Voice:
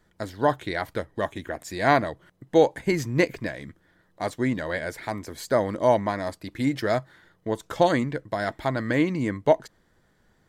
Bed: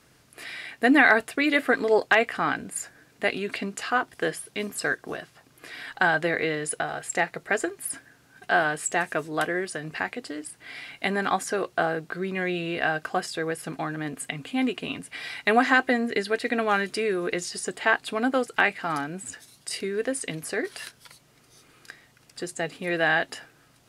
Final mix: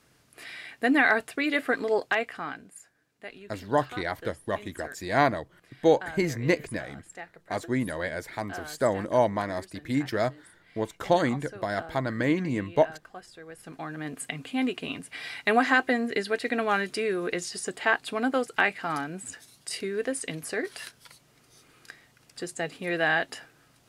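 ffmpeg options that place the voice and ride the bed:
-filter_complex "[0:a]adelay=3300,volume=-2.5dB[a];[1:a]volume=11dB,afade=t=out:st=1.86:d=0.95:silence=0.223872,afade=t=in:st=13.47:d=0.72:silence=0.177828[b];[a][b]amix=inputs=2:normalize=0"

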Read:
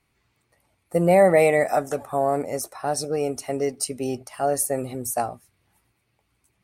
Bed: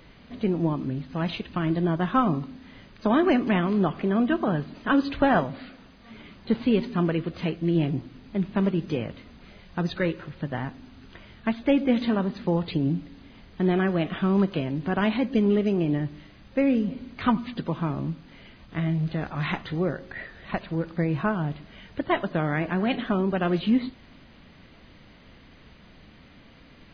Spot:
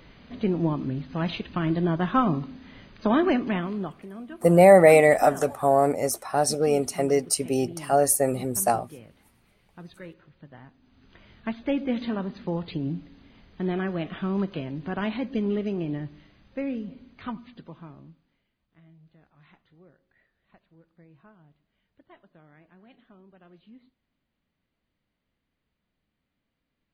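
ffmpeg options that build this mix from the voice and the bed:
-filter_complex "[0:a]adelay=3500,volume=2.5dB[a];[1:a]volume=12dB,afade=t=out:st=3.13:d=0.94:silence=0.141254,afade=t=in:st=10.8:d=0.52:silence=0.251189,afade=t=out:st=15.7:d=2.75:silence=0.0595662[b];[a][b]amix=inputs=2:normalize=0"

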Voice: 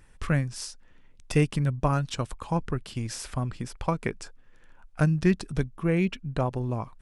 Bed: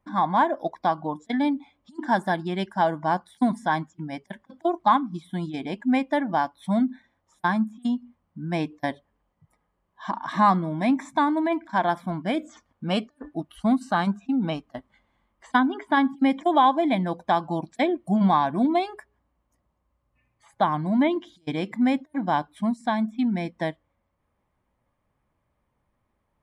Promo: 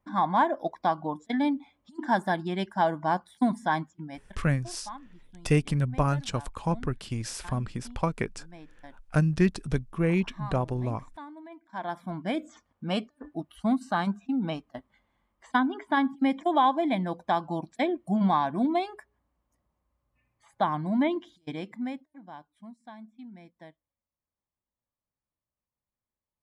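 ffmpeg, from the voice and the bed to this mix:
-filter_complex "[0:a]adelay=4150,volume=-0.5dB[a];[1:a]volume=15.5dB,afade=t=out:st=3.81:d=0.66:silence=0.105925,afade=t=in:st=11.62:d=0.63:silence=0.125893,afade=t=out:st=21.14:d=1.03:silence=0.133352[b];[a][b]amix=inputs=2:normalize=0"

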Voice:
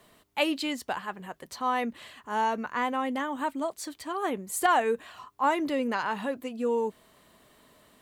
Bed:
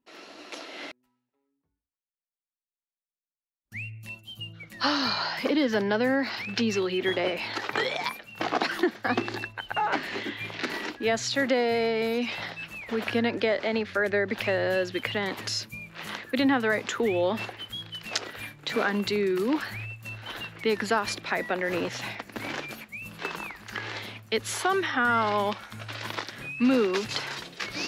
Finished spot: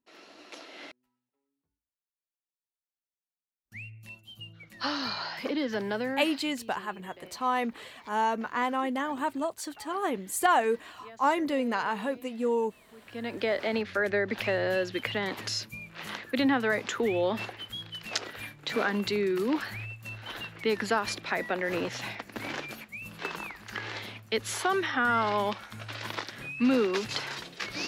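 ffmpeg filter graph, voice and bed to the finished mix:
-filter_complex "[0:a]adelay=5800,volume=0dB[a];[1:a]volume=15.5dB,afade=t=out:st=5.97:d=0.58:silence=0.133352,afade=t=in:st=13.07:d=0.49:silence=0.0841395[b];[a][b]amix=inputs=2:normalize=0"

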